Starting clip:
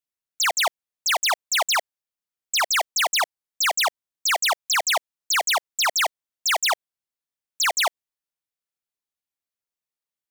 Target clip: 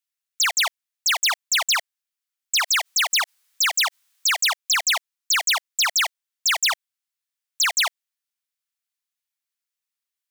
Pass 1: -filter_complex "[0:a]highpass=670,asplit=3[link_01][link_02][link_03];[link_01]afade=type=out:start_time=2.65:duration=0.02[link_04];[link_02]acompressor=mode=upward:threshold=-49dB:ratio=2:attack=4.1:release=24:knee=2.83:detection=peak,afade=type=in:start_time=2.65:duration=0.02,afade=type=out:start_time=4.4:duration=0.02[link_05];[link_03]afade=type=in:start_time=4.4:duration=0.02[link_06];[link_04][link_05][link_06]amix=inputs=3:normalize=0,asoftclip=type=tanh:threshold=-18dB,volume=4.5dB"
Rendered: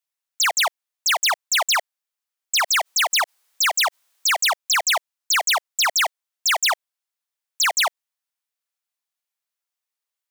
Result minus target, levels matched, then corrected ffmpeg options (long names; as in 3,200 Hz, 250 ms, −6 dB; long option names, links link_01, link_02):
500 Hz band +8.0 dB
-filter_complex "[0:a]highpass=1400,asplit=3[link_01][link_02][link_03];[link_01]afade=type=out:start_time=2.65:duration=0.02[link_04];[link_02]acompressor=mode=upward:threshold=-49dB:ratio=2:attack=4.1:release=24:knee=2.83:detection=peak,afade=type=in:start_time=2.65:duration=0.02,afade=type=out:start_time=4.4:duration=0.02[link_05];[link_03]afade=type=in:start_time=4.4:duration=0.02[link_06];[link_04][link_05][link_06]amix=inputs=3:normalize=0,asoftclip=type=tanh:threshold=-18dB,volume=4.5dB"